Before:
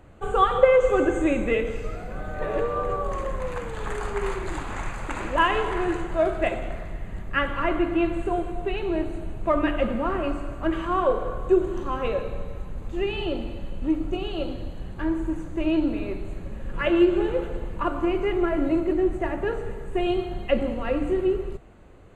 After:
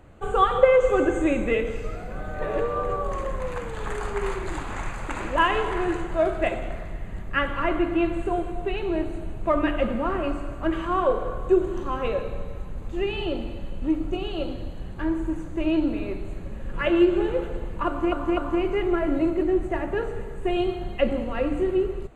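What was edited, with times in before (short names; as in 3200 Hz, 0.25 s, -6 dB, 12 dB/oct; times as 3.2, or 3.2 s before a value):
17.87–18.12 loop, 3 plays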